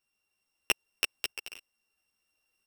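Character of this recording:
a buzz of ramps at a fixed pitch in blocks of 16 samples
tremolo saw up 0.76 Hz, depth 40%
a shimmering, thickened sound

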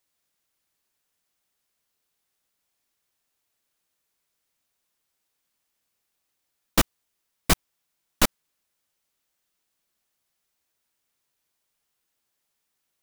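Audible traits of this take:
background noise floor −79 dBFS
spectral slope −3.0 dB per octave

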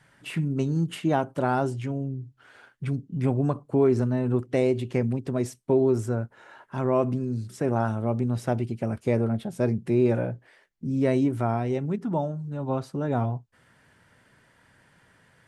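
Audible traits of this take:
background noise floor −62 dBFS
spectral slope −7.0 dB per octave

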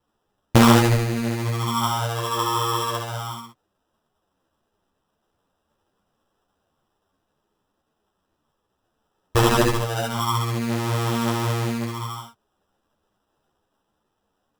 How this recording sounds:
phaser sweep stages 8, 0.29 Hz, lowest notch 200–1,700 Hz
aliases and images of a low sample rate 2,200 Hz, jitter 0%
a shimmering, thickened sound

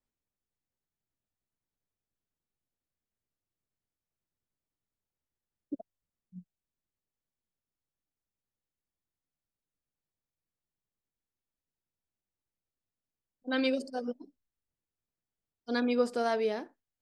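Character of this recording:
background noise floor −93 dBFS
spectral slope −2.0 dB per octave

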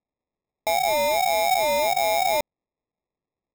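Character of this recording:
aliases and images of a low sample rate 1,500 Hz, jitter 0%

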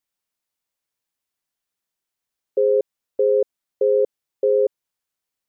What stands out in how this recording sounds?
background noise floor −85 dBFS
spectral slope +23.5 dB per octave

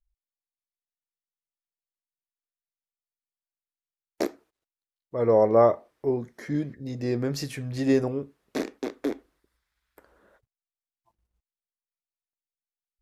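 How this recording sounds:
background noise floor −96 dBFS
spectral slope −5.5 dB per octave

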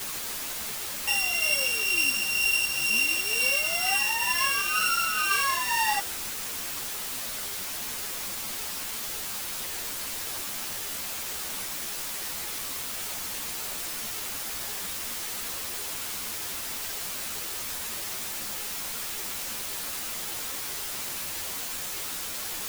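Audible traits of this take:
a buzz of ramps at a fixed pitch in blocks of 16 samples
tremolo triangle 2.1 Hz, depth 50%
a quantiser's noise floor 6 bits, dither triangular
a shimmering, thickened sound

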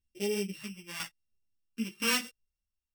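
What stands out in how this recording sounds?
a buzz of ramps at a fixed pitch in blocks of 16 samples
phaser sweep stages 2, 0.89 Hz, lowest notch 550–1,100 Hz
tremolo saw down 1 Hz, depth 75%
a shimmering, thickened sound

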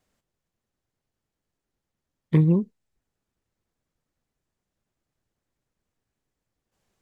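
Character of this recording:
background noise floor −85 dBFS
spectral slope −8.0 dB per octave

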